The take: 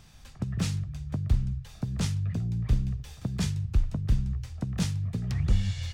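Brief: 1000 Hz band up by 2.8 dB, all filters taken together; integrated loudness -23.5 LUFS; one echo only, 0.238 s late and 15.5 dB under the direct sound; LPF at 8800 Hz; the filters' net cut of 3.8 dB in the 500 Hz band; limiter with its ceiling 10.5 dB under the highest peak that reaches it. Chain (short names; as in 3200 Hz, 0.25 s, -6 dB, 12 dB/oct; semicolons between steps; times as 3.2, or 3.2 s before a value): LPF 8800 Hz; bell 500 Hz -6.5 dB; bell 1000 Hz +5.5 dB; limiter -23.5 dBFS; echo 0.238 s -15.5 dB; gain +10 dB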